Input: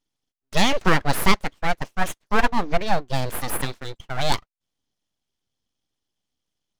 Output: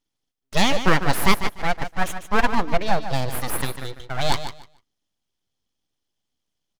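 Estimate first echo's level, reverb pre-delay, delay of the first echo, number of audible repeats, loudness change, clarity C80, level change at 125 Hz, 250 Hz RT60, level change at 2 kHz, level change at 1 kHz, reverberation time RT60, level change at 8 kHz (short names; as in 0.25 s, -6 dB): -10.5 dB, none, 0.148 s, 2, +0.5 dB, none, +0.5 dB, none, +0.5 dB, +0.5 dB, none, +0.5 dB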